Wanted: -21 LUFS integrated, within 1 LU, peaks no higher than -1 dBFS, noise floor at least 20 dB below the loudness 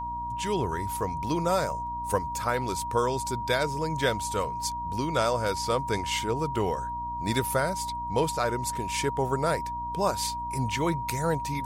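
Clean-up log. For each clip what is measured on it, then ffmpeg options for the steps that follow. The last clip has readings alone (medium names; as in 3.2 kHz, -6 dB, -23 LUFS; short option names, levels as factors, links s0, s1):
hum 60 Hz; highest harmonic 300 Hz; hum level -40 dBFS; steady tone 950 Hz; tone level -31 dBFS; loudness -28.5 LUFS; peak level -11.0 dBFS; loudness target -21.0 LUFS
-> -af "bandreject=f=60:t=h:w=6,bandreject=f=120:t=h:w=6,bandreject=f=180:t=h:w=6,bandreject=f=240:t=h:w=6,bandreject=f=300:t=h:w=6"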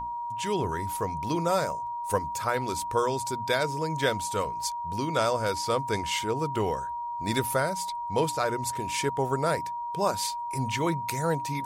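hum not found; steady tone 950 Hz; tone level -31 dBFS
-> -af "bandreject=f=950:w=30"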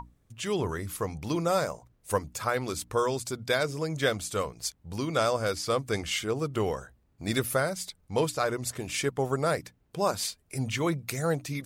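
steady tone not found; loudness -30.0 LUFS; peak level -12.0 dBFS; loudness target -21.0 LUFS
-> -af "volume=2.82"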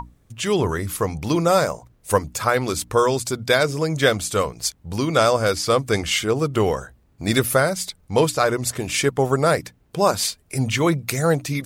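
loudness -21.0 LUFS; peak level -3.0 dBFS; noise floor -58 dBFS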